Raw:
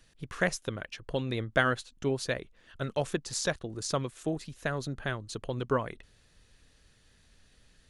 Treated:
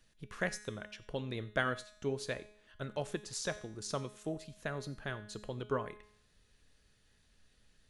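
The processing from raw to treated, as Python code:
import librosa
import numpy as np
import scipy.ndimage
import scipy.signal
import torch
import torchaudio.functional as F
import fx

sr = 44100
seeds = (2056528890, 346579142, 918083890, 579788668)

y = fx.comb_fb(x, sr, f0_hz=210.0, decay_s=0.71, harmonics='all', damping=0.0, mix_pct=70)
y = y + 10.0 ** (-22.5 / 20.0) * np.pad(y, (int(91 * sr / 1000.0), 0))[:len(y)]
y = F.gain(torch.from_numpy(y), 2.5).numpy()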